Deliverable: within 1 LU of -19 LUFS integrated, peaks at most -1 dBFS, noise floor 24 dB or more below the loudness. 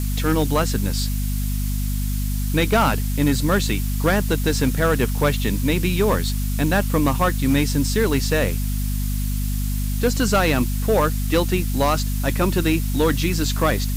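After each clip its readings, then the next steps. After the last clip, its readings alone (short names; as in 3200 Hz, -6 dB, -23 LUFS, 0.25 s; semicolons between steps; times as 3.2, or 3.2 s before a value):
hum 50 Hz; harmonics up to 250 Hz; hum level -20 dBFS; noise floor -23 dBFS; noise floor target -45 dBFS; loudness -21.0 LUFS; peak -7.5 dBFS; loudness target -19.0 LUFS
-> notches 50/100/150/200/250 Hz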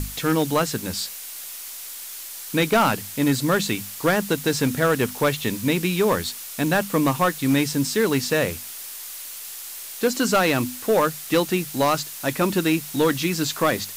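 hum none; noise floor -36 dBFS; noise floor target -47 dBFS
-> denoiser 11 dB, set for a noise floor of -36 dBFS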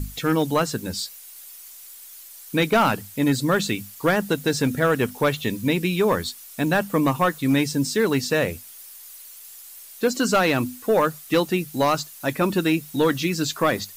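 noise floor -43 dBFS; noise floor target -47 dBFS
-> denoiser 6 dB, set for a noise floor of -43 dBFS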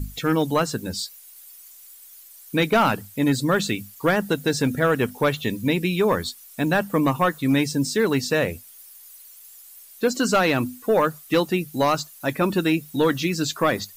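noise floor -47 dBFS; loudness -22.5 LUFS; peak -10.0 dBFS; loudness target -19.0 LUFS
-> gain +3.5 dB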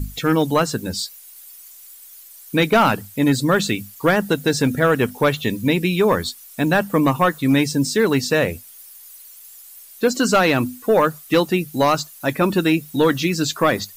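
loudness -19.0 LUFS; peak -6.5 dBFS; noise floor -43 dBFS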